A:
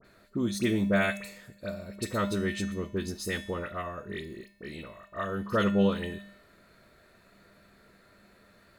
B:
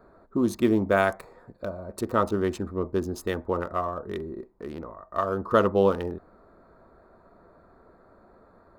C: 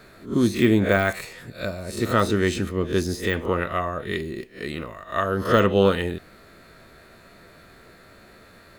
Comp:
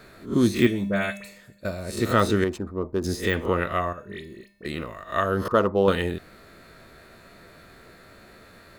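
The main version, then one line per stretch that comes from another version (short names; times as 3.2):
C
0.67–1.65 from A
2.44–3.04 from B
3.93–4.65 from A
5.48–5.88 from B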